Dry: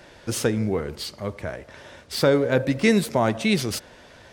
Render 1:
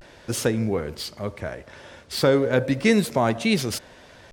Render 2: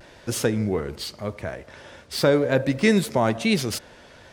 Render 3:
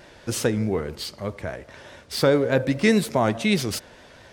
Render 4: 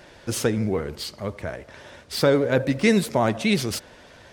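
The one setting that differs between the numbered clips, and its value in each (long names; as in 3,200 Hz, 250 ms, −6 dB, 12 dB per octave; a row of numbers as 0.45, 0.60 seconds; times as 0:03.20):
pitch vibrato, speed: 0.35, 0.92, 4.8, 15 Hertz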